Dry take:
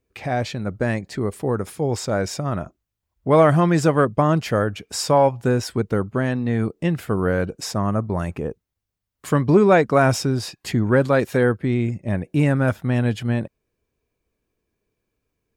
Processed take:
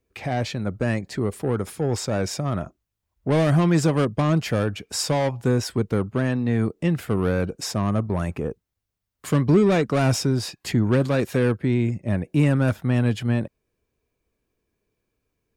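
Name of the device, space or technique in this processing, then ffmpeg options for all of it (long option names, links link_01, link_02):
one-band saturation: -filter_complex "[0:a]acrossover=split=340|2500[link_01][link_02][link_03];[link_02]asoftclip=type=tanh:threshold=-23dB[link_04];[link_01][link_04][link_03]amix=inputs=3:normalize=0"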